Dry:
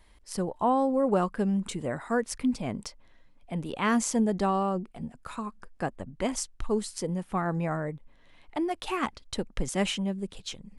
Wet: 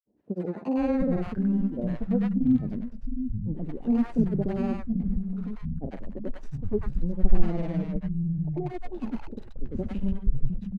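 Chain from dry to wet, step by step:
running median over 41 samples
RIAA equalisation playback
granular cloud, spray 100 ms, pitch spread up and down by 0 semitones
three-band delay without the direct sound mids, highs, lows 100/710 ms, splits 190/750 Hz

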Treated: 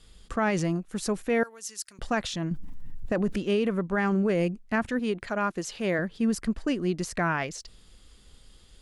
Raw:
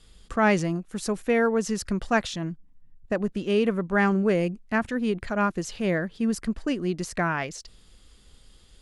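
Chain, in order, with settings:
0:04.99–0:05.99: low-shelf EQ 150 Hz −12 dB
brickwall limiter −17 dBFS, peak gain reduction 7.5 dB
0:01.43–0:01.99: first difference
0:02.51–0:03.36: envelope flattener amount 70%

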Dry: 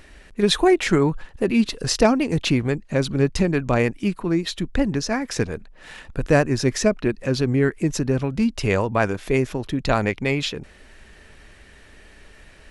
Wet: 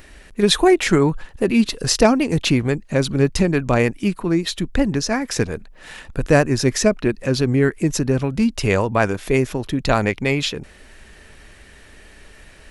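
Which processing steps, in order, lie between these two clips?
high-shelf EQ 9,900 Hz +8.5 dB
level +2.5 dB

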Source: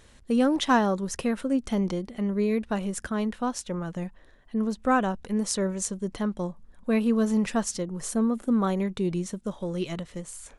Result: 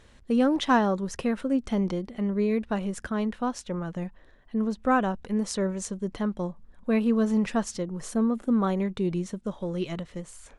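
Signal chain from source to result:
high-shelf EQ 7,200 Hz −11.5 dB

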